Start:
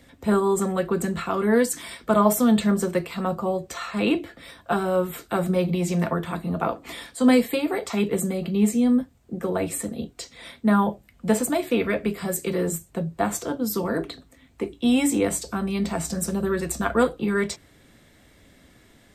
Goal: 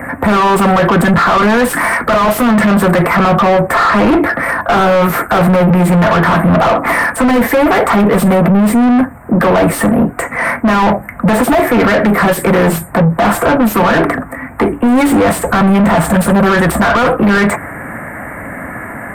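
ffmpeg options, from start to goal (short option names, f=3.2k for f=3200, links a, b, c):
-filter_complex "[0:a]asuperstop=centerf=4400:order=8:qfactor=0.61,equalizer=f=400:w=1.4:g=-11.5,asplit=2[a][b];[b]highpass=f=720:p=1,volume=39dB,asoftclip=type=tanh:threshold=-7.5dB[c];[a][c]amix=inputs=2:normalize=0,lowpass=f=1.2k:p=1,volume=-6dB,acontrast=86,alimiter=level_in=7.5dB:limit=-1dB:release=50:level=0:latency=1,volume=-5dB"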